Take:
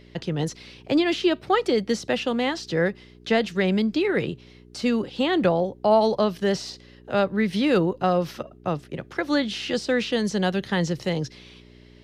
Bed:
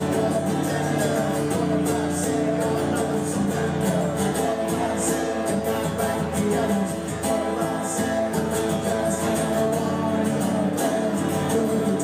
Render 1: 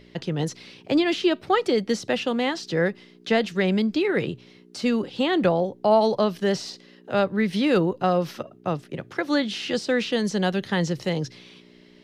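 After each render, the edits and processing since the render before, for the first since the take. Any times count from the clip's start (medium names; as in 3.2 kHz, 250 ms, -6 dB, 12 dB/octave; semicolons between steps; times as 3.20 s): de-hum 60 Hz, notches 2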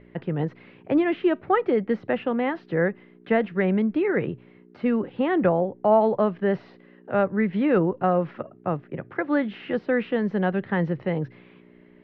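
low-pass 2.1 kHz 24 dB/octave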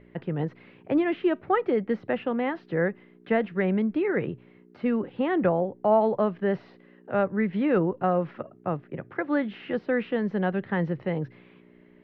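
trim -2.5 dB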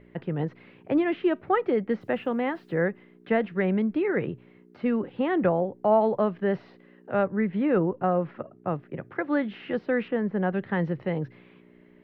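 2.01–2.82 s: word length cut 12-bit, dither none; 7.27–8.68 s: low-pass 2.4 kHz 6 dB/octave; 10.08–10.53 s: low-pass 2.2 kHz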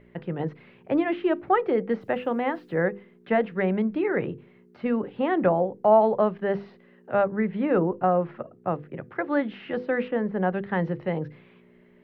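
hum notches 50/100/150/200/250/300/350/400/450/500 Hz; dynamic bell 770 Hz, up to +4 dB, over -35 dBFS, Q 0.98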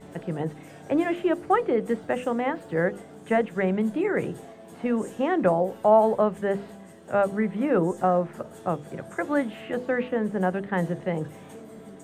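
add bed -22 dB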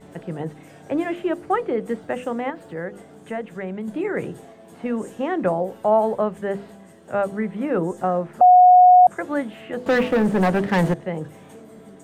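2.50–3.88 s: compression 1.5:1, threshold -36 dBFS; 8.41–9.07 s: bleep 727 Hz -7 dBFS; 9.86–10.94 s: waveshaping leveller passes 3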